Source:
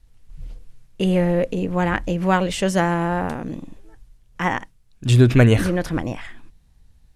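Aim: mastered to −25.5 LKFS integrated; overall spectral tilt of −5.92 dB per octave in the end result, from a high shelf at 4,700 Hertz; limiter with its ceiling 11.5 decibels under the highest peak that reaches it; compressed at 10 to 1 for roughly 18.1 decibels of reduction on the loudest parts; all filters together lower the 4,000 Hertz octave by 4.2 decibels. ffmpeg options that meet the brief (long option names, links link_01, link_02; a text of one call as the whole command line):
ffmpeg -i in.wav -af "equalizer=frequency=4000:width_type=o:gain=-8.5,highshelf=frequency=4700:gain=4.5,acompressor=threshold=-27dB:ratio=10,volume=12dB,alimiter=limit=-15.5dB:level=0:latency=1" out.wav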